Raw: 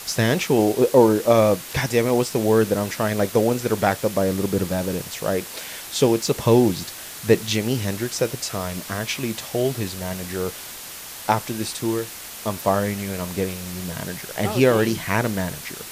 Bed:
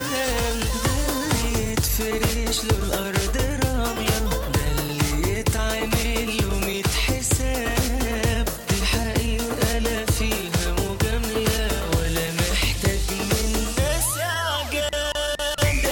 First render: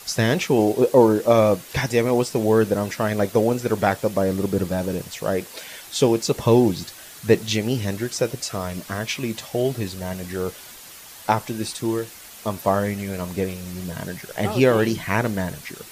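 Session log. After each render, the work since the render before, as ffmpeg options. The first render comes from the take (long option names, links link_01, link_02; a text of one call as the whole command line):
ffmpeg -i in.wav -af "afftdn=noise_reduction=7:noise_floor=-37" out.wav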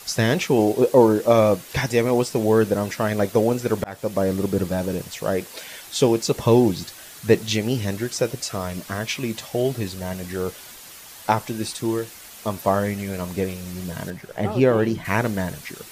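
ffmpeg -i in.wav -filter_complex "[0:a]asettb=1/sr,asplit=3[link_01][link_02][link_03];[link_01]atrim=end=14.104[link_04];[link_02]atrim=start=14.1:end=15.05,asetpts=PTS-STARTPTS,afade=type=in:duration=0.004:curve=qsin,afade=type=out:start_time=0.946:duration=0.004:curve=qsin,highshelf=frequency=2200:gain=-10.5[link_05];[link_03]atrim=start=15.046[link_06];[link_04][link_05]acrossfade=duration=0.004:curve1=hsin:curve2=qsin[link_07];[link_07][link_06]acrossfade=duration=0.004:curve1=qsin:curve2=hsin,asplit=2[link_08][link_09];[link_08]atrim=end=3.84,asetpts=PTS-STARTPTS,afade=type=out:start_time=3.836:duration=0.004:curve=hsin[link_10];[link_09]atrim=start=3.84,asetpts=PTS-STARTPTS,afade=type=in:duration=0.47:curve=qsin[link_11];[link_10][link_11]concat=n=2:v=0:a=1" out.wav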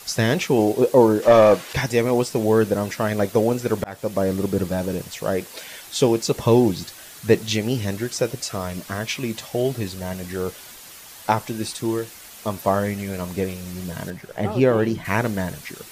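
ffmpeg -i in.wav -filter_complex "[0:a]asettb=1/sr,asplit=3[link_01][link_02][link_03];[link_01]atrim=end=1.224[link_04];[link_02]atrim=start=1.22:end=1.73,asetpts=PTS-STARTPTS,afade=type=in:duration=0.004:curve=qsin,afade=type=out:start_time=0.506:duration=0.004:curve=qsin,asplit=2[link_05][link_06];[link_06]highpass=frequency=720:poles=1,volume=16dB,asoftclip=type=tanh:threshold=-3dB[link_07];[link_05][link_07]amix=inputs=2:normalize=0,lowpass=frequency=2700:poles=1,volume=-6dB[link_08];[link_03]atrim=start=1.726[link_09];[link_04][link_08]acrossfade=duration=0.004:curve1=hsin:curve2=qsin[link_10];[link_10][link_09]acrossfade=duration=0.004:curve1=qsin:curve2=hsin" out.wav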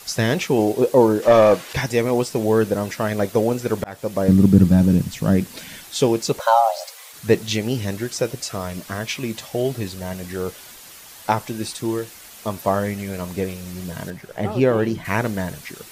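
ffmpeg -i in.wav -filter_complex "[0:a]asettb=1/sr,asplit=3[link_01][link_02][link_03];[link_01]atrim=end=4.284[link_04];[link_02]atrim=start=4.28:end=5.84,asetpts=PTS-STARTPTS,afade=type=in:duration=0.004:curve=qsin,afade=type=out:start_time=1.556:duration=0.004:curve=qsin,lowshelf=frequency=320:width_type=q:width=1.5:gain=11[link_05];[link_03]atrim=start=5.836[link_06];[link_04][link_05]acrossfade=duration=0.004:curve1=hsin:curve2=qsin[link_07];[link_07][link_06]acrossfade=duration=0.004:curve1=qsin:curve2=hsin,asplit=3[link_08][link_09][link_10];[link_08]afade=type=out:start_time=6.38:duration=0.02[link_11];[link_09]afreqshift=450,afade=type=in:start_time=6.38:duration=0.02,afade=type=out:start_time=7.12:duration=0.02[link_12];[link_10]afade=type=in:start_time=7.12:duration=0.02[link_13];[link_11][link_12][link_13]amix=inputs=3:normalize=0" out.wav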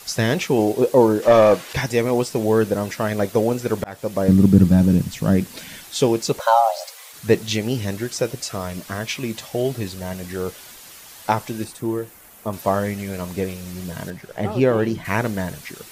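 ffmpeg -i in.wav -filter_complex "[0:a]asettb=1/sr,asplit=3[link_01][link_02][link_03];[link_01]atrim=end=11.644[link_04];[link_02]atrim=start=11.64:end=12.53,asetpts=PTS-STARTPTS,afade=type=in:duration=0.004:curve=qsin,afade=type=out:start_time=0.886:duration=0.004:curve=qsin,equalizer=frequency=4500:width=0.59:gain=-11.5[link_05];[link_03]atrim=start=12.526[link_06];[link_04][link_05]acrossfade=duration=0.004:curve1=hsin:curve2=qsin[link_07];[link_07][link_06]acrossfade=duration=0.004:curve1=qsin:curve2=hsin" out.wav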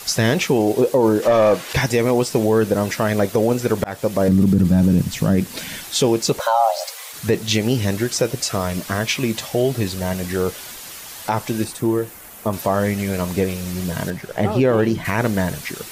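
ffmpeg -i in.wav -filter_complex "[0:a]asplit=2[link_01][link_02];[link_02]acompressor=threshold=-23dB:ratio=6,volume=1dB[link_03];[link_01][link_03]amix=inputs=2:normalize=0,alimiter=limit=-7.5dB:level=0:latency=1:release=24" out.wav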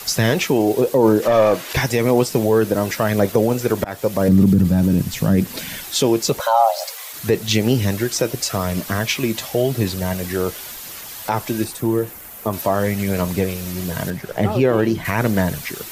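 ffmpeg -i in.wav -filter_complex "[0:a]aphaser=in_gain=1:out_gain=1:delay=3.2:decay=0.22:speed=0.91:type=sinusoidal,acrossover=split=140|7600[link_01][link_02][link_03];[link_03]aexciter=amount=1.4:drive=6.8:freq=12000[link_04];[link_01][link_02][link_04]amix=inputs=3:normalize=0" out.wav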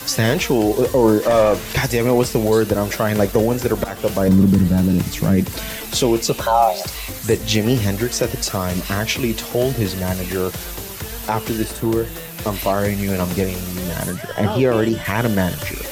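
ffmpeg -i in.wav -i bed.wav -filter_complex "[1:a]volume=-9dB[link_01];[0:a][link_01]amix=inputs=2:normalize=0" out.wav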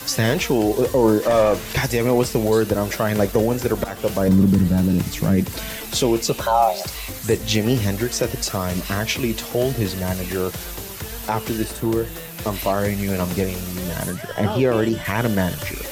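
ffmpeg -i in.wav -af "volume=-2dB" out.wav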